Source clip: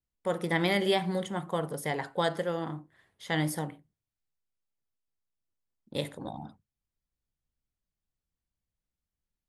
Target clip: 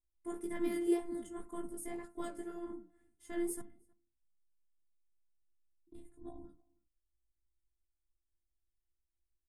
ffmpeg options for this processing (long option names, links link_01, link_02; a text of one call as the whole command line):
ffmpeg -i in.wav -filter_complex "[0:a]flanger=delay=16:depth=2.8:speed=0.35,asettb=1/sr,asplit=3[link_01][link_02][link_03];[link_01]atrim=end=3.614[link_04];[link_02]atrim=start=3.61:end=6.25,asetpts=PTS-STARTPTS,afade=type=in:duration=0.004:curve=qsin,afade=type=out:start_time=2.636:duration=0.004:curve=qsin,acrossover=split=160[link_05][link_06];[link_06]acompressor=threshold=-50dB:ratio=10[link_07];[link_05][link_07]amix=inputs=2:normalize=0[link_08];[link_03]atrim=start=6.246[link_09];[link_04][link_08]acrossfade=duration=0.004:curve1=hsin:curve2=qsin[link_10];[link_10][link_09]acrossfade=duration=0.004:curve1=qsin:curve2=hsin,afftfilt=real='hypot(re,im)*cos(PI*b)':imag='0':win_size=512:overlap=0.75,flanger=delay=0.1:depth=8.2:regen=-82:speed=1.9:shape=sinusoidal,asplit=2[link_11][link_12];[link_12]adelay=314.9,volume=-27dB,highshelf=frequency=4000:gain=-7.08[link_13];[link_11][link_13]amix=inputs=2:normalize=0,adynamicsmooth=sensitivity=3.5:basefreq=6300,firequalizer=gain_entry='entry(110,0);entry(620,-21);entry(1100,-19);entry(3900,-27);entry(8600,4)':delay=0.05:min_phase=1,volume=14.5dB" out.wav